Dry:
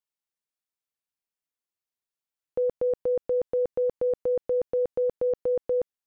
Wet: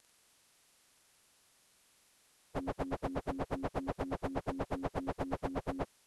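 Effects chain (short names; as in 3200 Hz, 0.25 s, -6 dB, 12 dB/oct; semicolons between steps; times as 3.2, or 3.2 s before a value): pitch shift by moving bins -10.5 st; spectral compressor 10:1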